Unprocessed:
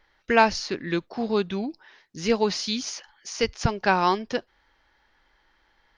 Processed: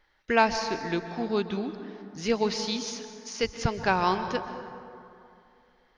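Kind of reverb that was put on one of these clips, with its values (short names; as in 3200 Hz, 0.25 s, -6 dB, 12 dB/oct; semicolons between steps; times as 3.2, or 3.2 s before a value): plate-style reverb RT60 2.6 s, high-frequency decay 0.45×, pre-delay 0.115 s, DRR 9 dB; gain -3.5 dB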